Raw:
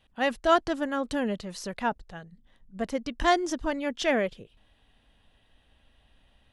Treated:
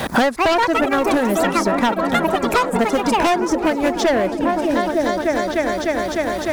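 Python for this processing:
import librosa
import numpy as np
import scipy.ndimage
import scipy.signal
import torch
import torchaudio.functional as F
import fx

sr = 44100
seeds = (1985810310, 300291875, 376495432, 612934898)

p1 = fx.law_mismatch(x, sr, coded='mu')
p2 = fx.highpass(p1, sr, hz=120.0, slope=6)
p3 = fx.peak_eq(p2, sr, hz=2900.0, db=-14.5, octaves=0.54)
p4 = fx.transient(p3, sr, attack_db=7, sustain_db=-5)
p5 = p4 + fx.echo_opening(p4, sr, ms=302, hz=200, octaves=1, feedback_pct=70, wet_db=-6, dry=0)
p6 = fx.echo_pitch(p5, sr, ms=260, semitones=6, count=2, db_per_echo=-6.0)
p7 = fx.fold_sine(p6, sr, drive_db=13, ceiling_db=-6.5)
p8 = p6 + (p7 * 10.0 ** (-8.5 / 20.0))
p9 = fx.band_squash(p8, sr, depth_pct=100)
y = p9 * 10.0 ** (-1.0 / 20.0)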